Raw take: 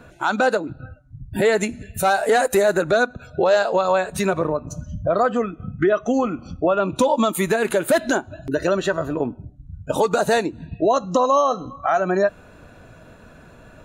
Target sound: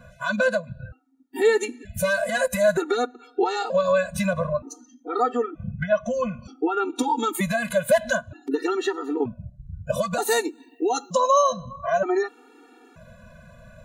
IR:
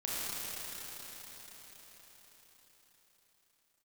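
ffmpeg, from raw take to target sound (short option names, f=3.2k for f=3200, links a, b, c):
-filter_complex "[0:a]asettb=1/sr,asplit=3[a][b][c];[a]atrim=end=10.224[d];[b]atrim=start=10.22:end=11.53,asetpts=PTS-STARTPTS,afade=t=in:d=0.004:c=qsin,afade=t=out:st=1.306:d=0.004:c=qsin,aemphasis=mode=production:type=bsi[e];[c]atrim=start=11.526[f];[d][e]acrossfade=d=0.004:c1=hsin:c2=qsin[g];[g][f]acrossfade=d=0.004:c1=qsin:c2=hsin,afftfilt=real='re*gt(sin(2*PI*0.54*pts/sr)*(1-2*mod(floor(b*sr/1024/240),2)),0)':imag='im*gt(sin(2*PI*0.54*pts/sr)*(1-2*mod(floor(b*sr/1024/240),2)),0)':win_size=1024:overlap=0.75"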